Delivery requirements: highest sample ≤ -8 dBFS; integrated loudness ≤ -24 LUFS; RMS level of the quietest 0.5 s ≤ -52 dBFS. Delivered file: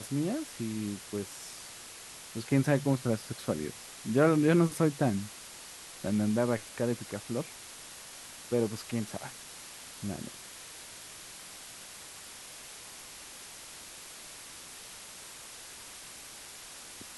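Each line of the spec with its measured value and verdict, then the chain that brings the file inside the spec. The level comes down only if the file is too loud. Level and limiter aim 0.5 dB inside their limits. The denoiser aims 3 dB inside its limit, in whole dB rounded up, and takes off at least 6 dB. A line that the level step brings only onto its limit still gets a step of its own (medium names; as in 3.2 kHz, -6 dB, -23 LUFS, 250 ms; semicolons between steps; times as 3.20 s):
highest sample -13.0 dBFS: pass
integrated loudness -32.0 LUFS: pass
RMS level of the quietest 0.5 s -47 dBFS: fail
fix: noise reduction 8 dB, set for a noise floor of -47 dBFS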